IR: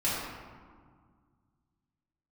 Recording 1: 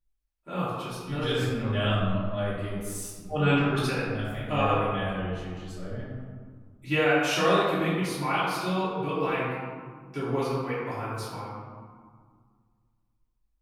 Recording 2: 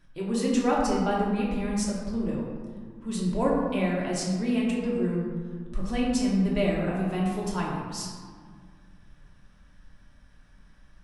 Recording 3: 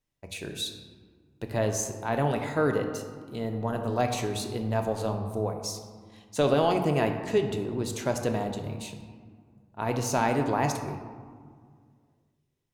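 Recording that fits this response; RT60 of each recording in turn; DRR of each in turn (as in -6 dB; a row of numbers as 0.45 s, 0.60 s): 1; 1.8 s, 1.8 s, 1.9 s; -11.0 dB, -4.5 dB, 4.5 dB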